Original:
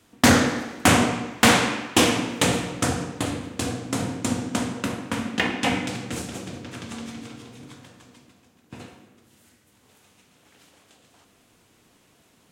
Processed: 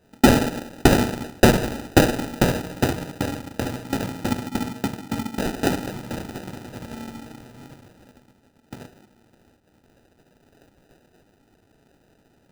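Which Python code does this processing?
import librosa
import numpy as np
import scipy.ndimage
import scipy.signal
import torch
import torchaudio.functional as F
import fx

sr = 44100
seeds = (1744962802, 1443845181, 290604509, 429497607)

y = fx.spec_erase(x, sr, start_s=4.48, length_s=0.95, low_hz=490.0, high_hz=2300.0)
y = fx.transient(y, sr, attack_db=4, sustain_db=-5)
y = fx.sample_hold(y, sr, seeds[0], rate_hz=1100.0, jitter_pct=0)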